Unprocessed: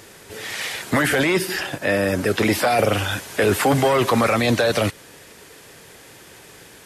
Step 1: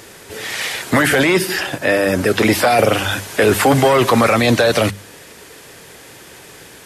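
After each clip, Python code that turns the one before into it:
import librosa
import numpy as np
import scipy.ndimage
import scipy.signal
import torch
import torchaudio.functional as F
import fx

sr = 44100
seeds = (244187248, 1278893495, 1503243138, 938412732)

y = fx.hum_notches(x, sr, base_hz=50, count=4)
y = y * librosa.db_to_amplitude(5.0)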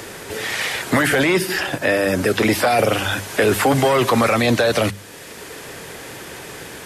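y = fx.band_squash(x, sr, depth_pct=40)
y = y * librosa.db_to_amplitude(-3.0)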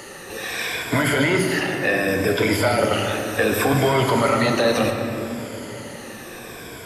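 y = fx.spec_ripple(x, sr, per_octave=1.7, drift_hz=-0.68, depth_db=12)
y = fx.room_shoebox(y, sr, seeds[0], volume_m3=180.0, walls='hard', distance_m=0.37)
y = y * librosa.db_to_amplitude(-6.0)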